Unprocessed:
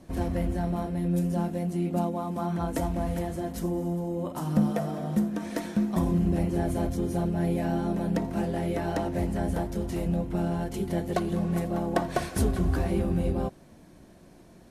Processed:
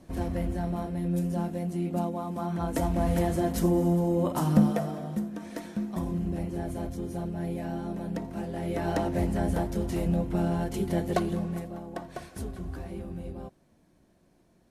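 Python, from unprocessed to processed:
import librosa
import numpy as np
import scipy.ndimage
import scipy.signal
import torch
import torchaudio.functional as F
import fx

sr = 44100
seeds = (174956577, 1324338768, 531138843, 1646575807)

y = fx.gain(x, sr, db=fx.line((2.51, -2.0), (3.27, 5.5), (4.4, 5.5), (5.21, -6.0), (8.48, -6.0), (8.89, 1.0), (11.21, 1.0), (11.83, -11.5)))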